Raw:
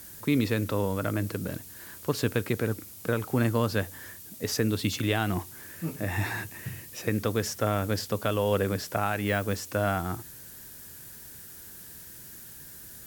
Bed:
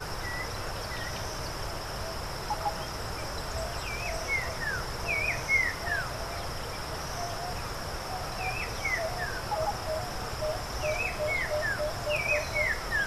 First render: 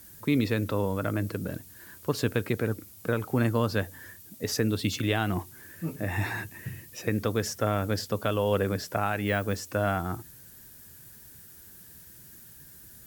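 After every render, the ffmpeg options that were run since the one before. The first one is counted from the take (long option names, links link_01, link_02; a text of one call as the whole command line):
ffmpeg -i in.wav -af "afftdn=noise_reduction=6:noise_floor=-46" out.wav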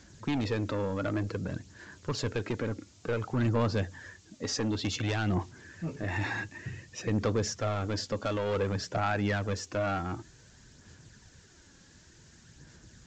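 ffmpeg -i in.wav -af "aresample=16000,asoftclip=type=tanh:threshold=-24.5dB,aresample=44100,aphaser=in_gain=1:out_gain=1:delay=3.7:decay=0.33:speed=0.55:type=sinusoidal" out.wav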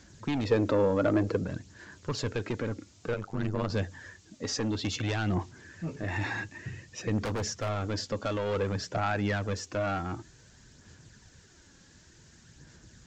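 ffmpeg -i in.wav -filter_complex "[0:a]asettb=1/sr,asplit=3[link_01][link_02][link_03];[link_01]atrim=end=0.514[link_04];[link_02]atrim=start=0.51:end=1.44,asetpts=PTS-STARTPTS,afade=type=in:duration=0.004:curve=qsin,afade=type=out:start_time=0.926:duration=0.004:curve=qsin,equalizer=frequency=490:width=0.52:gain=8.5[link_05];[link_03]atrim=start=1.436[link_06];[link_04][link_05]acrossfade=duration=0.004:curve1=hsin:curve2=qsin[link_07];[link_07][link_06]acrossfade=duration=0.004:curve1=qsin:curve2=hsin,asettb=1/sr,asplit=3[link_08][link_09][link_10];[link_08]atrim=end=3.144[link_11];[link_09]atrim=start=3.14:end=3.7,asetpts=PTS-STARTPTS,afade=type=in:duration=0.004:curve=qsin,afade=type=out:start_time=0.556:duration=0.004:curve=qsin,tremolo=f=98:d=0.889[link_12];[link_10]atrim=start=3.696[link_13];[link_11][link_12]acrossfade=duration=0.004:curve1=hsin:curve2=qsin[link_14];[link_14][link_13]acrossfade=duration=0.004:curve1=qsin:curve2=hsin,asplit=3[link_15][link_16][link_17];[link_15]afade=type=out:start_time=7.17:duration=0.02[link_18];[link_16]aeval=exprs='0.0501*(abs(mod(val(0)/0.0501+3,4)-2)-1)':channel_layout=same,afade=type=in:start_time=7.17:duration=0.02,afade=type=out:start_time=7.68:duration=0.02[link_19];[link_17]afade=type=in:start_time=7.68:duration=0.02[link_20];[link_18][link_19][link_20]amix=inputs=3:normalize=0" out.wav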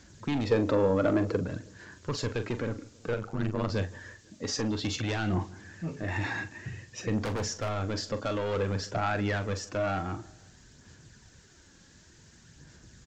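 ffmpeg -i in.wav -filter_complex "[0:a]asplit=2[link_01][link_02];[link_02]adelay=42,volume=-11dB[link_03];[link_01][link_03]amix=inputs=2:normalize=0,asplit=2[link_04][link_05];[link_05]adelay=164,lowpass=frequency=2000:poles=1,volume=-22dB,asplit=2[link_06][link_07];[link_07]adelay=164,lowpass=frequency=2000:poles=1,volume=0.49,asplit=2[link_08][link_09];[link_09]adelay=164,lowpass=frequency=2000:poles=1,volume=0.49[link_10];[link_04][link_06][link_08][link_10]amix=inputs=4:normalize=0" out.wav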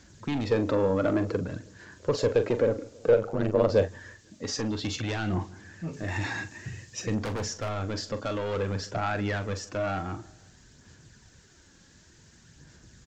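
ffmpeg -i in.wav -filter_complex "[0:a]asettb=1/sr,asplit=3[link_01][link_02][link_03];[link_01]atrim=end=1.994[link_04];[link_02]atrim=start=1.99:end=3.88,asetpts=PTS-STARTPTS,afade=type=in:duration=0.004:curve=qsin,afade=type=out:start_time=1.886:duration=0.004:curve=qsin,equalizer=frequency=530:width_type=o:width=0.94:gain=14.5[link_05];[link_03]atrim=start=3.876[link_06];[link_04][link_05]acrossfade=duration=0.004:curve1=hsin:curve2=qsin[link_07];[link_07][link_06]acrossfade=duration=0.004:curve1=qsin:curve2=hsin,asettb=1/sr,asplit=3[link_08][link_09][link_10];[link_08]atrim=end=5.934[link_11];[link_09]atrim=start=5.93:end=7.15,asetpts=PTS-STARTPTS,afade=type=in:duration=0.004:curve=qsin,afade=type=out:start_time=1.216:duration=0.004:curve=qsin,bass=frequency=250:gain=1,treble=frequency=4000:gain=7[link_12];[link_10]atrim=start=7.146[link_13];[link_11][link_12]acrossfade=duration=0.004:curve1=hsin:curve2=qsin[link_14];[link_14][link_13]acrossfade=duration=0.004:curve1=qsin:curve2=hsin" out.wav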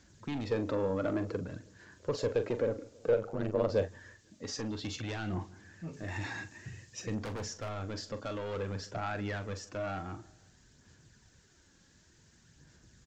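ffmpeg -i in.wav -af "volume=-7dB" out.wav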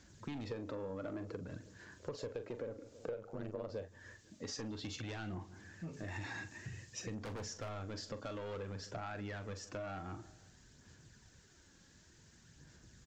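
ffmpeg -i in.wav -af "acompressor=threshold=-41dB:ratio=5" out.wav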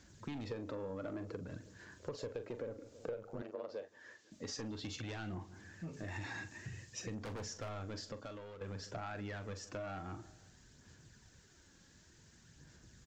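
ffmpeg -i in.wav -filter_complex "[0:a]asettb=1/sr,asplit=3[link_01][link_02][link_03];[link_01]atrim=end=3.424[link_04];[link_02]atrim=start=3.42:end=4.32,asetpts=PTS-STARTPTS,afade=type=in:duration=0.004:curve=qsin,afade=type=out:start_time=0.896:duration=0.004:curve=qsin,highpass=330,lowpass=6300[link_05];[link_03]atrim=start=4.316[link_06];[link_04][link_05]acrossfade=duration=0.004:curve1=hsin:curve2=qsin[link_07];[link_07][link_06]acrossfade=duration=0.004:curve1=qsin:curve2=hsin,asplit=2[link_08][link_09];[link_08]atrim=end=8.61,asetpts=PTS-STARTPTS,afade=type=out:start_time=7.94:duration=0.67:silence=0.298538[link_10];[link_09]atrim=start=8.61,asetpts=PTS-STARTPTS,afade=type=in:duration=0.004:curve=hsin:silence=0.298538[link_11];[link_10][link_11]concat=n=2:v=0:a=1" out.wav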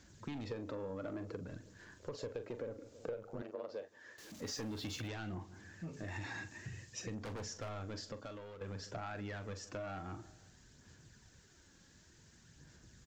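ffmpeg -i in.wav -filter_complex "[0:a]asettb=1/sr,asplit=3[link_01][link_02][link_03];[link_01]atrim=end=1.504[link_04];[link_02]atrim=start=1.5:end=2.12,asetpts=PTS-STARTPTS,afade=type=in:duration=0.004:curve=qsin,afade=type=out:start_time=0.616:duration=0.004:curve=qsin,aeval=exprs='if(lt(val(0),0),0.708*val(0),val(0))':channel_layout=same[link_05];[link_03]atrim=start=2.116[link_06];[link_04][link_05]acrossfade=duration=0.004:curve1=hsin:curve2=qsin[link_07];[link_07][link_06]acrossfade=duration=0.004:curve1=qsin:curve2=hsin,asettb=1/sr,asplit=3[link_08][link_09][link_10];[link_08]atrim=end=4.184[link_11];[link_09]atrim=start=4.18:end=5.08,asetpts=PTS-STARTPTS,afade=type=in:duration=0.004:curve=qsin,afade=type=out:start_time=0.896:duration=0.004:curve=qsin,aeval=exprs='val(0)+0.5*0.00299*sgn(val(0))':channel_layout=same[link_12];[link_10]atrim=start=5.076[link_13];[link_11][link_12]acrossfade=duration=0.004:curve1=hsin:curve2=qsin[link_14];[link_14][link_13]acrossfade=duration=0.004:curve1=qsin:curve2=hsin" out.wav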